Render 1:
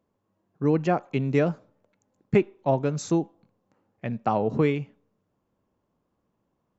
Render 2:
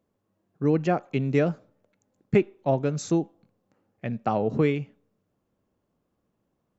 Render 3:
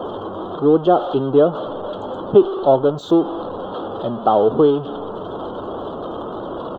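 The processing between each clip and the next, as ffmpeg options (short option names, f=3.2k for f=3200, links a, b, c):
-af "equalizer=f=970:t=o:w=0.43:g=-5"
-af "aeval=exprs='val(0)+0.5*0.0422*sgn(val(0))':c=same,afftdn=nr=24:nf=-44,firequalizer=gain_entry='entry(170,0);entry(360,13);entry(1300,12);entry(2200,-29);entry(3200,15);entry(5200,-15)':delay=0.05:min_phase=1,volume=-3dB"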